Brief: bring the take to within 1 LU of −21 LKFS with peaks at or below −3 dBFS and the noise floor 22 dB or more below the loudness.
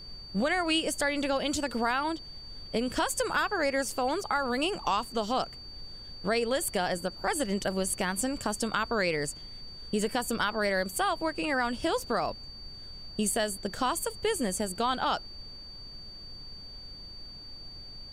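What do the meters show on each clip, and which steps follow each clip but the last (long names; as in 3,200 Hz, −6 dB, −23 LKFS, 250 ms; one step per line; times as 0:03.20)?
interfering tone 4,600 Hz; level of the tone −44 dBFS; background noise floor −46 dBFS; target noise floor −52 dBFS; integrated loudness −30.0 LKFS; sample peak −14.0 dBFS; target loudness −21.0 LKFS
→ notch filter 4,600 Hz, Q 30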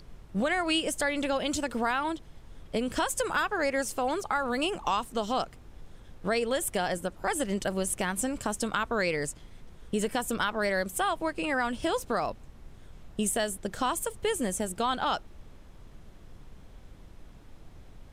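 interfering tone none found; background noise floor −51 dBFS; target noise floor −52 dBFS
→ noise reduction from a noise print 6 dB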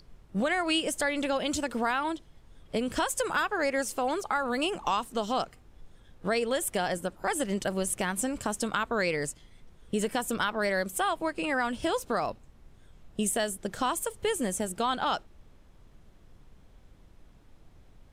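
background noise floor −57 dBFS; integrated loudness −30.0 LKFS; sample peak −14.0 dBFS; target loudness −21.0 LKFS
→ level +9 dB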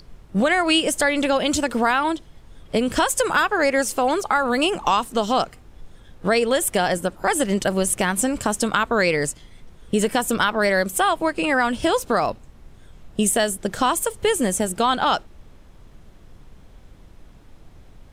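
integrated loudness −21.0 LKFS; sample peak −5.0 dBFS; background noise floor −48 dBFS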